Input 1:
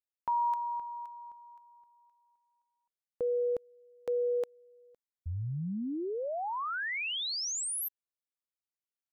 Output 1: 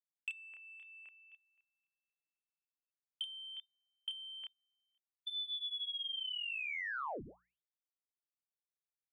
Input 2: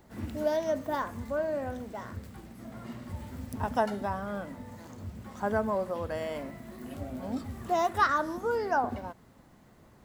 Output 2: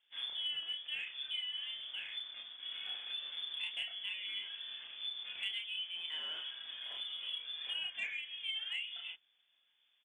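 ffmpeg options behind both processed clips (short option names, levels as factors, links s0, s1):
-filter_complex "[0:a]aemphasis=mode=production:type=75kf,lowpass=f=3100:t=q:w=0.5098,lowpass=f=3100:t=q:w=0.6013,lowpass=f=3100:t=q:w=0.9,lowpass=f=3100:t=q:w=2.563,afreqshift=-3600,agate=range=0.126:threshold=0.00631:ratio=3:release=93:detection=peak,lowshelf=f=140:g=-7,acompressor=threshold=0.01:ratio=5:attack=35:release=535:knee=1:detection=peak,asoftclip=type=tanh:threshold=0.0447,bandreject=f=60:t=h:w=6,bandreject=f=120:t=h:w=6,bandreject=f=180:t=h:w=6,asplit=2[s0][s1];[s1]adelay=30,volume=0.794[s2];[s0][s2]amix=inputs=2:normalize=0,volume=0.794"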